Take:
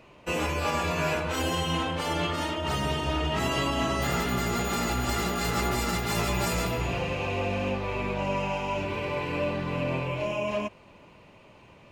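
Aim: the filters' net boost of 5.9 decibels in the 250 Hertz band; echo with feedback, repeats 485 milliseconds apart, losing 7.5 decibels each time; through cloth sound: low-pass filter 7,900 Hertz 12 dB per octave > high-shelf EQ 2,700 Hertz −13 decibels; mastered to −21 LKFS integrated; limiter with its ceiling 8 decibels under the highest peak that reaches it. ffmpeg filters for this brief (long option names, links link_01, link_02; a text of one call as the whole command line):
ffmpeg -i in.wav -af "equalizer=frequency=250:width_type=o:gain=8,alimiter=limit=-19.5dB:level=0:latency=1,lowpass=7900,highshelf=frequency=2700:gain=-13,aecho=1:1:485|970|1455|1940|2425:0.422|0.177|0.0744|0.0312|0.0131,volume=8dB" out.wav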